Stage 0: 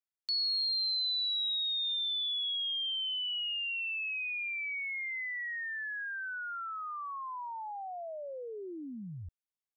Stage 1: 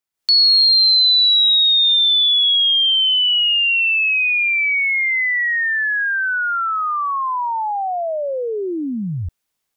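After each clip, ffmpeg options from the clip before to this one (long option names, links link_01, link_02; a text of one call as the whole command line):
ffmpeg -i in.wav -af "dynaudnorm=framelen=130:gausssize=3:maxgain=11.5dB,volume=7.5dB" out.wav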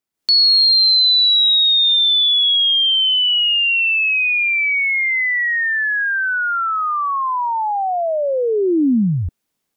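ffmpeg -i in.wav -af "equalizer=frequency=250:width_type=o:width=2:gain=9" out.wav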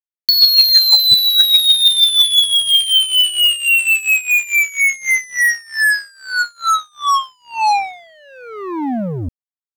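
ffmpeg -i in.wav -af "aphaser=in_gain=1:out_gain=1:delay=2:decay=0.55:speed=0.39:type=triangular,acrusher=bits=2:mix=0:aa=0.5" out.wav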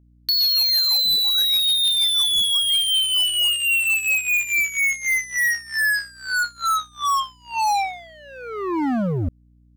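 ffmpeg -i in.wav -af "asoftclip=type=hard:threshold=-17dB,aeval=exprs='val(0)+0.00224*(sin(2*PI*60*n/s)+sin(2*PI*2*60*n/s)/2+sin(2*PI*3*60*n/s)/3+sin(2*PI*4*60*n/s)/4+sin(2*PI*5*60*n/s)/5)':channel_layout=same" out.wav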